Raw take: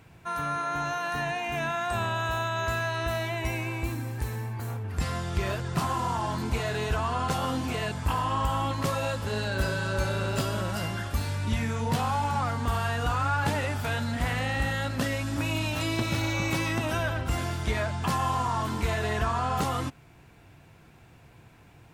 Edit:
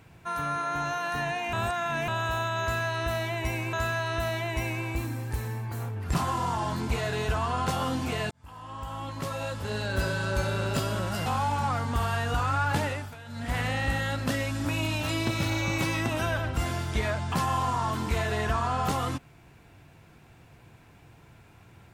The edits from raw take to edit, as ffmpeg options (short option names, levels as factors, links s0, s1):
-filter_complex "[0:a]asplit=9[s0][s1][s2][s3][s4][s5][s6][s7][s8];[s0]atrim=end=1.532[s9];[s1]atrim=start=1.528:end=2.082,asetpts=PTS-STARTPTS,areverse[s10];[s2]atrim=start=2.078:end=3.732[s11];[s3]atrim=start=2.608:end=5.022[s12];[s4]atrim=start=5.758:end=7.93,asetpts=PTS-STARTPTS,afade=t=out:st=2.168:d=0.004:c=hsin[s13];[s5]atrim=start=7.93:end=10.882,asetpts=PTS-STARTPTS,afade=t=in:d=1.76[s14];[s6]atrim=start=11.978:end=13.88,asetpts=PTS-STARTPTS,afade=t=out:st=1.562:d=0.34:silence=0.158489[s15];[s7]atrim=start=13.88:end=13.97,asetpts=PTS-STARTPTS,volume=0.158[s16];[s8]atrim=start=13.97,asetpts=PTS-STARTPTS,afade=t=in:d=0.34:silence=0.158489[s17];[s9][s10]acrossfade=d=0.004:c1=hsin:c2=hsin[s18];[s18][s11]acrossfade=d=0.004:c1=hsin:c2=hsin[s19];[s19][s12]acrossfade=d=0.004:c1=hsin:c2=hsin[s20];[s13][s14]concat=n=2:v=0:a=1[s21];[s20][s21]acrossfade=d=0.004:c1=hsin:c2=hsin[s22];[s15][s16][s17]concat=n=3:v=0:a=1[s23];[s22][s23]acrossfade=d=0.004:c1=hsin:c2=hsin"